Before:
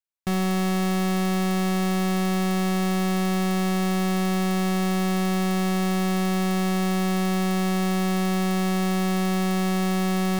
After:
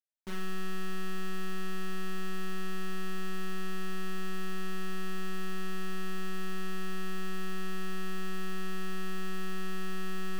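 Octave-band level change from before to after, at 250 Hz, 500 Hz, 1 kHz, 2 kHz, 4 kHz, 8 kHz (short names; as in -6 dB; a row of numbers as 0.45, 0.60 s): -18.0, -14.5, -15.5, -9.5, -12.5, -15.0 dB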